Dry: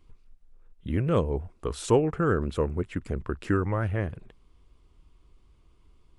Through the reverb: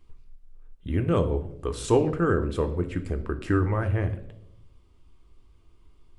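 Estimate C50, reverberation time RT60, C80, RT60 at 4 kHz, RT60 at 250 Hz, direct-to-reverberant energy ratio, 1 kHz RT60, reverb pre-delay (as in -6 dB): 13.0 dB, 0.80 s, 16.0 dB, 0.60 s, 1.0 s, 7.0 dB, 0.60 s, 3 ms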